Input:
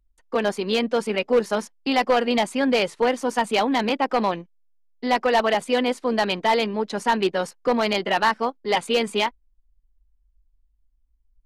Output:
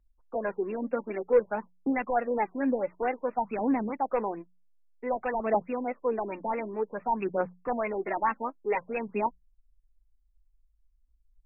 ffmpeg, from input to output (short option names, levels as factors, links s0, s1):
-af "bandreject=f=60:t=h:w=6,bandreject=f=120:t=h:w=6,bandreject=f=180:t=h:w=6,aphaser=in_gain=1:out_gain=1:delay=3.8:decay=0.56:speed=0.54:type=triangular,afftfilt=real='re*lt(b*sr/1024,970*pow(2800/970,0.5+0.5*sin(2*PI*4.6*pts/sr)))':imag='im*lt(b*sr/1024,970*pow(2800/970,0.5+0.5*sin(2*PI*4.6*pts/sr)))':win_size=1024:overlap=0.75,volume=0.376"